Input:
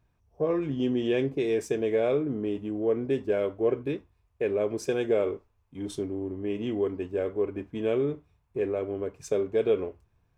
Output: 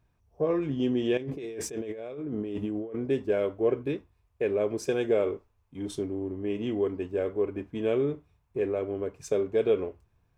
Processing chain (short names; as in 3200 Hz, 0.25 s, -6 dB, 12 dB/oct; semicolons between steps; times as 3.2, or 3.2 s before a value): 1.17–2.99 negative-ratio compressor -35 dBFS, ratio -1